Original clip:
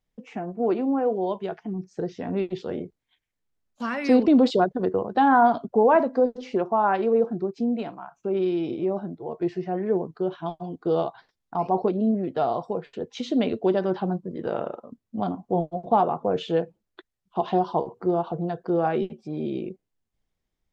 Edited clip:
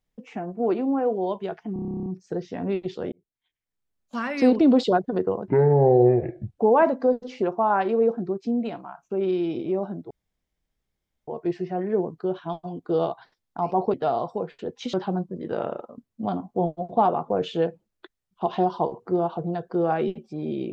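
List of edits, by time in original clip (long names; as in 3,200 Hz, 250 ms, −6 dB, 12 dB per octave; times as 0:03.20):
0:01.73: stutter 0.03 s, 12 plays
0:02.79–0:03.83: fade in
0:05.15–0:05.73: play speed 52%
0:09.24: splice in room tone 1.17 s
0:11.90–0:12.28: remove
0:13.28–0:13.88: remove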